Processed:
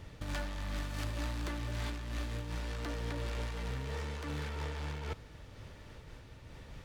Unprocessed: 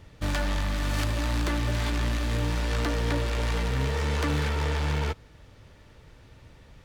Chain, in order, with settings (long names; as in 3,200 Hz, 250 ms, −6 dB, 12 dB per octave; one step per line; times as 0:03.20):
compressor whose output falls as the input rises −32 dBFS, ratio −1
amplitude modulation by smooth noise, depth 55%
level −2.5 dB